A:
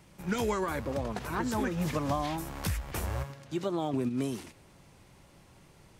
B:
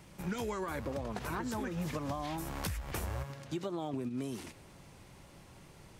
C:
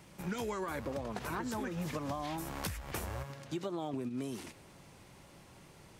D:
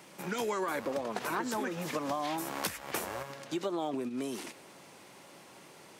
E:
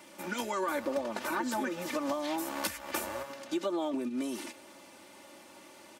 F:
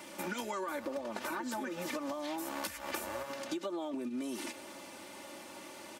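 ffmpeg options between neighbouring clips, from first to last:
ffmpeg -i in.wav -af "acompressor=threshold=-36dB:ratio=6,volume=2dB" out.wav
ffmpeg -i in.wav -af "lowshelf=frequency=86:gain=-7" out.wav
ffmpeg -i in.wav -af "highpass=270,volume=5.5dB" out.wav
ffmpeg -i in.wav -af "aecho=1:1:3.4:0.78,volume=-1.5dB" out.wav
ffmpeg -i in.wav -af "acompressor=threshold=-40dB:ratio=6,volume=4.5dB" out.wav

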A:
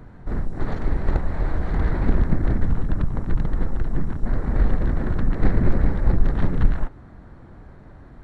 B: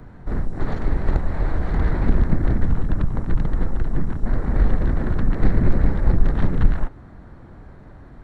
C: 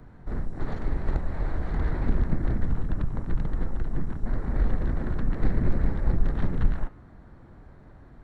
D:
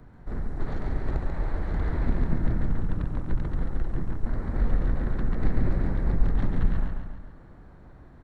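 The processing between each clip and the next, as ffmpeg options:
ffmpeg -i in.wav -filter_complex "[0:a]acrossover=split=280|3000[link_01][link_02][link_03];[link_02]acompressor=threshold=-28dB:ratio=6[link_04];[link_01][link_04][link_03]amix=inputs=3:normalize=0,volume=1.5dB" out.wav
ffmpeg -i in.wav -af "bandreject=frequency=96.71:width_type=h:width=4,bandreject=frequency=193.42:width_type=h:width=4,bandreject=frequency=290.13:width_type=h:width=4,bandreject=frequency=386.84:width_type=h:width=4,bandreject=frequency=483.55:width_type=h:width=4,bandreject=frequency=580.26:width_type=h:width=4,bandreject=frequency=676.97:width_type=h:width=4,bandreject=frequency=773.68:width_type=h:width=4,bandreject=frequency=870.39:width_type=h:width=4,bandreject=frequency=967.1:width_type=h:width=4,bandreject=frequency=1063.81:width_type=h:width=4,bandreject=frequency=1160.52:width_type=h:width=4,bandreject=frequency=1257.23:width_type=h:width=4,bandreject=frequency=1353.94:width_type=h:width=4,bandreject=frequency=1450.65:width_type=h:width=4,bandreject=frequency=1547.36:width_type=h:width=4,bandreject=frequency=1644.07:width_type=h:width=4,bandreject=frequency=1740.78:width_type=h:width=4,bandreject=frequency=1837.49:width_type=h:width=4,bandreject=frequency=1934.2:width_type=h:width=4,bandreject=frequency=2030.91:width_type=h:width=4,bandreject=frequency=2127.62:width_type=h:width=4,bandreject=frequency=2224.33:width_type=h:width=4,bandreject=frequency=2321.04:width_type=h:width=4,bandreject=frequency=2417.75:width_type=h:width=4,bandreject=frequency=2514.46:width_type=h:width=4,bandreject=frequency=2611.17:width_type=h:width=4,bandreject=frequency=2707.88:width_type=h:width=4,bandreject=frequency=2804.59:width_type=h:width=4,bandreject=frequency=2901.3:width_type=h:width=4,bandreject=frequency=2998.01:width_type=h:width=4,bandreject=frequency=3094.72:width_type=h:width=4,bandreject=frequency=3191.43:width_type=h:width=4,volume=-6.5dB" out.wav
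ffmpeg -i in.wav -af "aecho=1:1:139|278|417|556|695|834:0.562|0.281|0.141|0.0703|0.0351|0.0176,volume=-1.5dB" out.wav

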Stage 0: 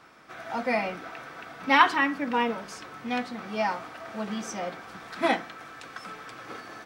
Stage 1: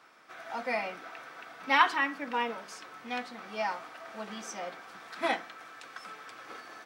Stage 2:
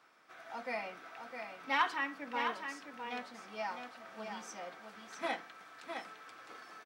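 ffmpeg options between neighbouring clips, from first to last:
ffmpeg -i in.wav -af "highpass=frequency=500:poles=1,volume=-3.5dB" out.wav
ffmpeg -i in.wav -af "asoftclip=type=tanh:threshold=-11dB,aecho=1:1:659:0.473,volume=-7dB" out.wav

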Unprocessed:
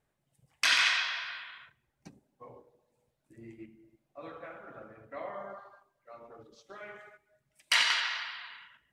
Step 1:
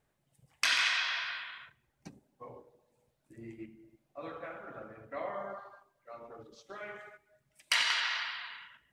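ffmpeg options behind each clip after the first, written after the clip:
ffmpeg -i in.wav -af "acompressor=threshold=-31dB:ratio=2,volume=2dB" out.wav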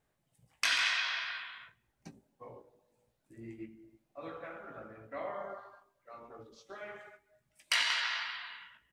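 ffmpeg -i in.wav -filter_complex "[0:a]asplit=2[link_01][link_02];[link_02]adelay=18,volume=-7.5dB[link_03];[link_01][link_03]amix=inputs=2:normalize=0,volume=-2dB" out.wav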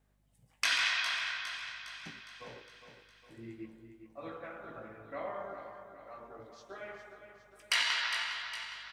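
ffmpeg -i in.wav -af "aecho=1:1:409|818|1227|1636|2045|2454:0.335|0.181|0.0977|0.0527|0.0285|0.0154,aeval=exprs='val(0)+0.000251*(sin(2*PI*50*n/s)+sin(2*PI*2*50*n/s)/2+sin(2*PI*3*50*n/s)/3+sin(2*PI*4*50*n/s)/4+sin(2*PI*5*50*n/s)/5)':channel_layout=same" out.wav

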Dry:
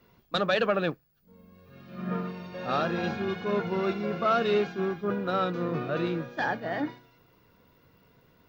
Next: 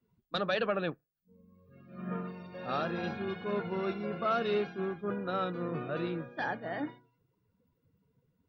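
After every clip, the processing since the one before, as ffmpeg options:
ffmpeg -i in.wav -af "afftdn=noise_reduction=18:noise_floor=-51,volume=-5.5dB" out.wav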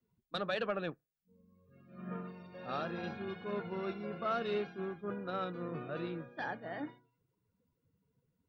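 ffmpeg -i in.wav -af "aeval=exprs='0.112*(cos(1*acos(clip(val(0)/0.112,-1,1)))-cos(1*PI/2))+0.00708*(cos(3*acos(clip(val(0)/0.112,-1,1)))-cos(3*PI/2))':channel_layout=same,volume=-3.5dB" out.wav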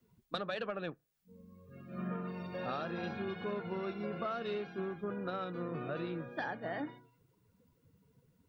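ffmpeg -i in.wav -af "acompressor=threshold=-45dB:ratio=6,volume=9.5dB" out.wav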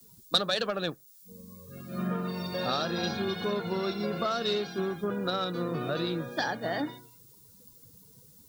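ffmpeg -i in.wav -af "aexciter=amount=8.4:drive=2.9:freq=3700,volume=7.5dB" out.wav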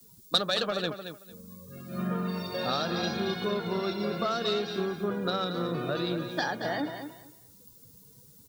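ffmpeg -i in.wav -af "aecho=1:1:225|450|675:0.355|0.0674|0.0128" out.wav

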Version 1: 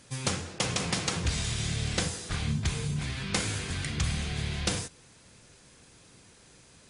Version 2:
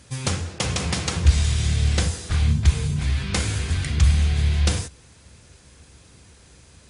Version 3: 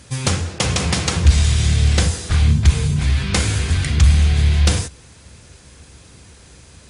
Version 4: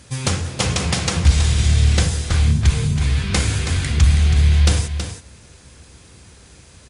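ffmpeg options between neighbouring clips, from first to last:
ffmpeg -i in.wav -af "equalizer=frequency=69:width_type=o:width=0.85:gain=14.5,volume=3.5dB" out.wav
ffmpeg -i in.wav -af "acontrast=47" out.wav
ffmpeg -i in.wav -af "aecho=1:1:324:0.376,volume=-1.5dB" out.wav

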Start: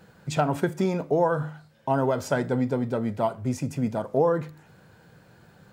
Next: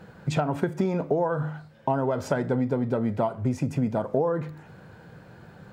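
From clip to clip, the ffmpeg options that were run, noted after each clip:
ffmpeg -i in.wav -af "acompressor=threshold=-28dB:ratio=5,highshelf=frequency=3700:gain=-11,volume=6.5dB" out.wav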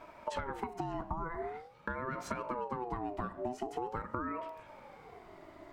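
ffmpeg -i in.wav -af "acompressor=threshold=-29dB:ratio=6,aeval=exprs='val(0)*sin(2*PI*640*n/s+640*0.25/0.45*sin(2*PI*0.45*n/s))':channel_layout=same,volume=-2.5dB" out.wav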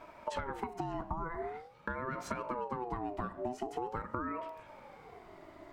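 ffmpeg -i in.wav -af anull out.wav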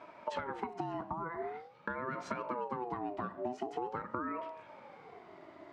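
ffmpeg -i in.wav -af "highpass=140,lowpass=5000" out.wav

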